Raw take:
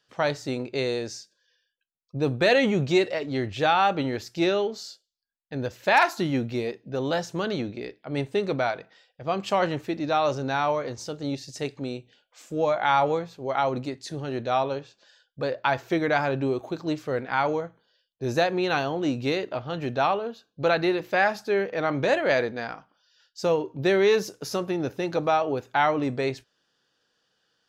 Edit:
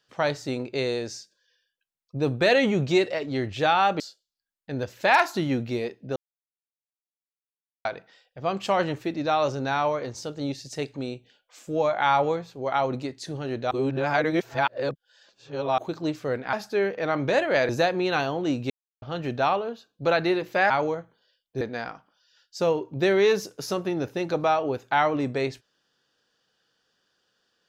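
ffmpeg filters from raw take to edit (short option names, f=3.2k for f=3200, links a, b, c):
-filter_complex "[0:a]asplit=12[a][b][c][d][e][f][g][h][i][j][k][l];[a]atrim=end=4.002[m];[b]atrim=start=4.828:end=6.99,asetpts=PTS-STARTPTS,afade=t=out:st=2.158:d=0.004:c=hsin[n];[c]atrim=start=6.99:end=8.68,asetpts=PTS-STARTPTS,volume=0[o];[d]atrim=start=8.68:end=14.542,asetpts=PTS-STARTPTS,afade=t=in:d=0.004:c=hsin[p];[e]atrim=start=14.538:end=16.612,asetpts=PTS-STARTPTS,areverse[q];[f]atrim=start=16.608:end=17.362[r];[g]atrim=start=21.278:end=22.442[s];[h]atrim=start=18.268:end=19.28,asetpts=PTS-STARTPTS,afade=t=out:st=1.008:d=0.004:c=hsin[t];[i]atrim=start=19.28:end=19.6,asetpts=PTS-STARTPTS,volume=0[u];[j]atrim=start=19.6:end=21.282,asetpts=PTS-STARTPTS,afade=t=in:d=0.004:c=hsin[v];[k]atrim=start=17.358:end=18.272[w];[l]atrim=start=22.438[x];[n][o][p]concat=n=3:v=0:a=1[y];[m][y]acrossfade=d=0.004:c1=hsin:c2=hsin[z];[z][q]acrossfade=d=0.004:c1=hsin:c2=hsin[aa];[aa][r]acrossfade=d=0.004:c1=hsin:c2=hsin[ab];[ab][s]acrossfade=d=0.004:c1=hsin:c2=hsin[ac];[t][u][v]concat=n=3:v=0:a=1[ad];[ac][ad]acrossfade=d=0.004:c1=hsin:c2=hsin[ae];[ae][w]acrossfade=d=0.004:c1=hsin:c2=hsin[af];[af][x]acrossfade=d=0.004:c1=hsin:c2=hsin"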